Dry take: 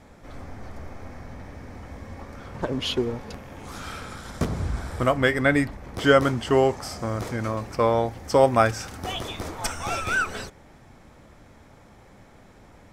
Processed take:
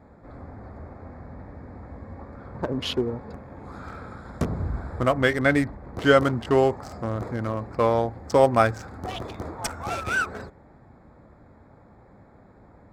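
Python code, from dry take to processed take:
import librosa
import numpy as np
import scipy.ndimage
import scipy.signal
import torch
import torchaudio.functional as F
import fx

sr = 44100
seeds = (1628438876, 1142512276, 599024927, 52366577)

y = fx.wiener(x, sr, points=15)
y = scipy.signal.sosfilt(scipy.signal.butter(2, 42.0, 'highpass', fs=sr, output='sos'), y)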